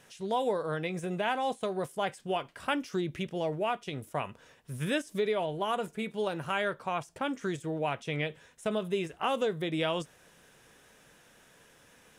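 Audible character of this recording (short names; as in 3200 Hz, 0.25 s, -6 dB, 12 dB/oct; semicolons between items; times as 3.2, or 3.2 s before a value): noise floor -61 dBFS; spectral tilt -4.0 dB/oct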